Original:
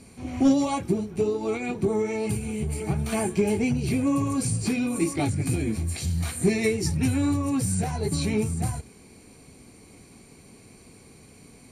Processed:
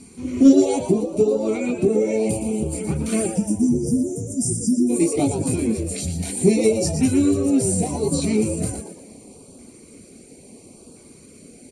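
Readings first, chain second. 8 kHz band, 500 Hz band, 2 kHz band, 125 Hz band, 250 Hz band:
+7.0 dB, +7.0 dB, -2.5 dB, +0.5 dB, +6.5 dB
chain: ten-band EQ 125 Hz -3 dB, 250 Hz +11 dB, 500 Hz +11 dB, 8000 Hz +8 dB; spectral delete 3.28–4.89, 260–4800 Hz; steep low-pass 12000 Hz 48 dB/oct; notch 1700 Hz, Q 12; two-slope reverb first 0.43 s, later 4.3 s, from -19 dB, DRR 10 dB; reverb removal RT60 0.5 s; bell 410 Hz -5 dB 2 oct; LFO notch saw up 0.73 Hz 530–2200 Hz; frequency-shifting echo 0.118 s, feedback 37%, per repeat +110 Hz, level -8.5 dB

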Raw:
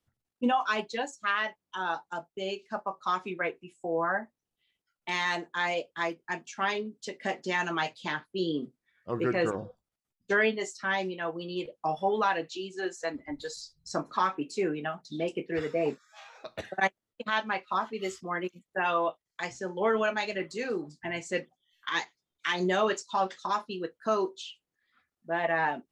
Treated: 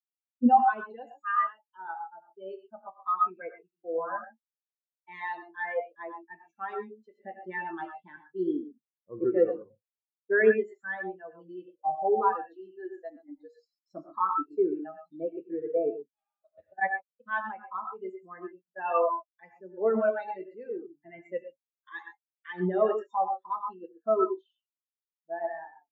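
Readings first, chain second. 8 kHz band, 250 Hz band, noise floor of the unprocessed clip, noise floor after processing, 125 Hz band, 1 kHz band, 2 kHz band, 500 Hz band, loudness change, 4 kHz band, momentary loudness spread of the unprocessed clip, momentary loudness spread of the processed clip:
under -35 dB, 0.0 dB, under -85 dBFS, under -85 dBFS, n/a, +1.0 dB, -5.0 dB, +1.5 dB, +1.5 dB, under -20 dB, 11 LU, 19 LU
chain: ending faded out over 0.60 s; non-linear reverb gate 0.15 s rising, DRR 2.5 dB; spectral expander 2.5:1; gain +2 dB

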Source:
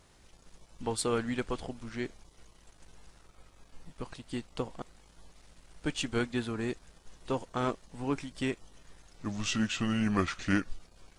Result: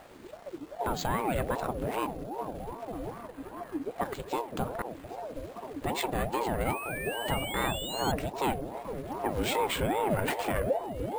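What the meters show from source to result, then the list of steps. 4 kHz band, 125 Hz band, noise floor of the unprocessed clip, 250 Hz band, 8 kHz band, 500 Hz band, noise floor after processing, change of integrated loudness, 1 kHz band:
+2.5 dB, +1.5 dB, -61 dBFS, -2.0 dB, +0.5 dB, +5.5 dB, -49 dBFS, +1.5 dB, +9.5 dB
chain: high shelf 3900 Hz -11 dB; notches 50/100/150/200/250/300/350/400/450 Hz; in parallel at -0.5 dB: compressor, threshold -45 dBFS, peak gain reduction 19 dB; on the sum: limiter -26.5 dBFS, peak gain reduction 10.5 dB; painted sound rise, 6.65–8.12, 1700–3800 Hz -44 dBFS; on a send: delay with a stepping band-pass 0.516 s, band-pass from 150 Hz, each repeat 0.7 oct, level -4 dB; on the sum: careless resampling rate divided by 4×, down filtered, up hold; ring modulator with a swept carrier 490 Hz, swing 45%, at 2.5 Hz; gain +8.5 dB

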